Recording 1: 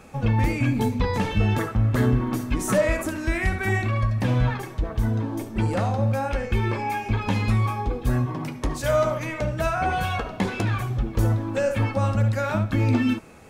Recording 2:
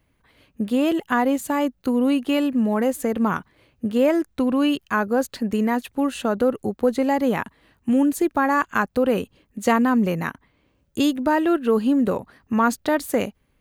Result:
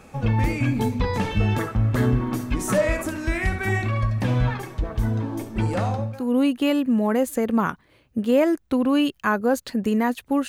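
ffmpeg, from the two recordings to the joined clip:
ffmpeg -i cue0.wav -i cue1.wav -filter_complex "[0:a]apad=whole_dur=10.48,atrim=end=10.48,atrim=end=6.35,asetpts=PTS-STARTPTS[link_01];[1:a]atrim=start=1.6:end=6.15,asetpts=PTS-STARTPTS[link_02];[link_01][link_02]acrossfade=duration=0.42:curve1=qua:curve2=qua" out.wav

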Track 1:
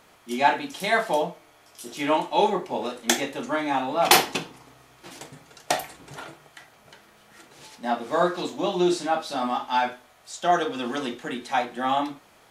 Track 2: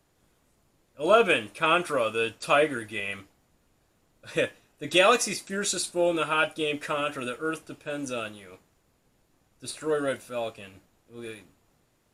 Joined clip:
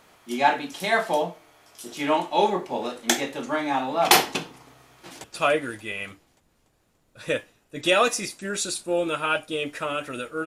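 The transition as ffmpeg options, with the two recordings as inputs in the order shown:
ffmpeg -i cue0.wav -i cue1.wav -filter_complex "[0:a]apad=whole_dur=10.46,atrim=end=10.46,atrim=end=5.242[link_01];[1:a]atrim=start=2.318:end=7.54[link_02];[link_01][link_02]acrossfade=duration=0.004:curve1=hsin:curve2=hsin,asplit=2[link_03][link_04];[link_04]afade=type=in:start_time=4.96:duration=0.01,afade=type=out:start_time=5.24:duration=0.01,aecho=0:1:290|580|870|1160|1450|1740:0.446684|0.223342|0.111671|0.0558354|0.0279177|0.0139589[link_05];[link_03][link_05]amix=inputs=2:normalize=0" out.wav

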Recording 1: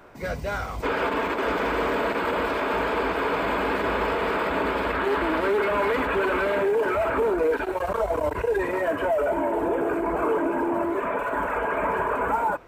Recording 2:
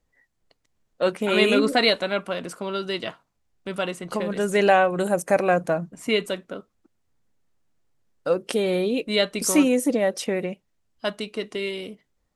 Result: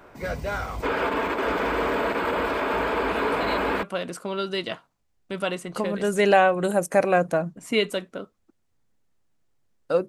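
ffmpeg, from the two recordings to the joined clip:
ffmpeg -i cue0.wav -i cue1.wav -filter_complex "[1:a]asplit=2[link_01][link_02];[0:a]apad=whole_dur=10.08,atrim=end=10.08,atrim=end=3.832[link_03];[link_02]atrim=start=2.188:end=8.44[link_04];[link_01]atrim=start=1.44:end=2.19,asetpts=PTS-STARTPTS,volume=-15.5dB,afade=type=in:duration=0.004:curve=hsin,afade=type=out:start_time=0.746:duration=0.004:curve=hsin,adelay=3080[link_05];[link_03][link_04]acrossfade=duration=0.004:curve1=hsin:curve2=hsin[link_06];[link_06][link_05]amix=inputs=2:normalize=0" out.wav

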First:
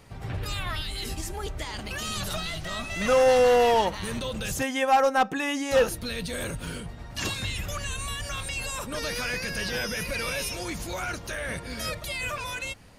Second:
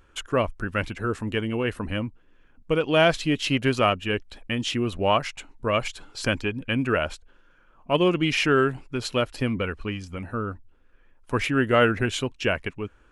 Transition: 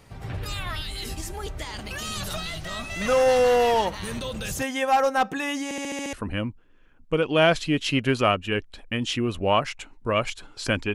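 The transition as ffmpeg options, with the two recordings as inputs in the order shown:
ffmpeg -i cue0.wav -i cue1.wav -filter_complex "[0:a]apad=whole_dur=10.94,atrim=end=10.94,asplit=7[link_01][link_02][link_03][link_04][link_05][link_06][link_07];[link_01]atrim=end=5.712[link_08];[link_02]atrim=start=5.638:end=5.712[link_09];[link_03]atrim=start=5.638:end=5.712[link_10];[link_04]atrim=start=5.638:end=5.712[link_11];[link_05]atrim=start=5.638:end=5.712[link_12];[link_06]atrim=start=5.638:end=5.712[link_13];[link_07]atrim=start=5.638:end=5.712[link_14];[1:a]atrim=start=1.708:end=6.52[link_15];[link_08][link_09]acrossfade=duration=0.004:curve1=hsin:curve2=hsin[link_16];[link_16][link_10]acrossfade=duration=0.004:curve1=hsin:curve2=hsin[link_17];[link_17][link_11]acrossfade=duration=0.004:curve1=hsin:curve2=hsin[link_18];[link_18][link_12]acrossfade=duration=0.004:curve1=hsin:curve2=hsin[link_19];[link_19][link_13]acrossfade=duration=0.004:curve1=hsin:curve2=hsin[link_20];[link_20][link_14]acrossfade=duration=0.004:curve1=hsin:curve2=hsin[link_21];[link_21][link_15]acrossfade=duration=0.004:curve1=hsin:curve2=hsin" out.wav

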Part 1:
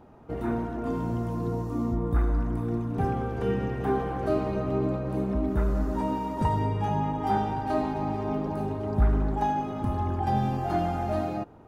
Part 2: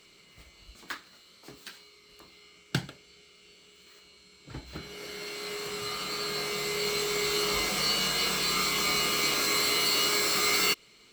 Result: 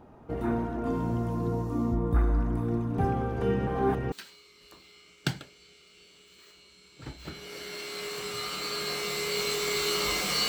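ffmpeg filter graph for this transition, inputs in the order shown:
ffmpeg -i cue0.wav -i cue1.wav -filter_complex "[0:a]apad=whole_dur=10.48,atrim=end=10.48,asplit=2[link_01][link_02];[link_01]atrim=end=3.672[link_03];[link_02]atrim=start=3.668:end=4.122,asetpts=PTS-STARTPTS,areverse[link_04];[1:a]atrim=start=1.598:end=7.96[link_05];[link_03][link_04]acrossfade=duration=0.004:curve1=hsin:curve2=hsin[link_06];[link_06][link_05]acrossfade=duration=0.004:curve1=hsin:curve2=hsin" out.wav

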